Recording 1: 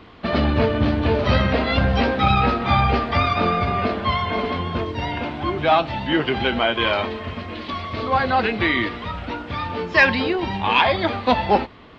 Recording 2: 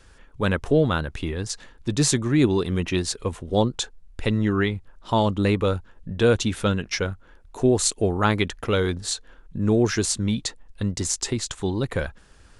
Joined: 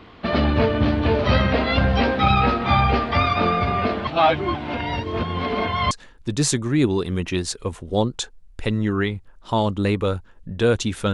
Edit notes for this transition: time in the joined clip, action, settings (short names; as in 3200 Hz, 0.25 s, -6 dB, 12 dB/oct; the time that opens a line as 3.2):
recording 1
4.07–5.91 reverse
5.91 switch to recording 2 from 1.51 s